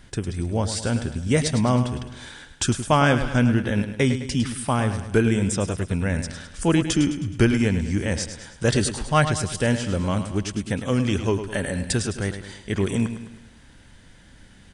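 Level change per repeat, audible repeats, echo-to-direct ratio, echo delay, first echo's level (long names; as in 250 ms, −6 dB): −6.0 dB, 5, −9.0 dB, 105 ms, −10.0 dB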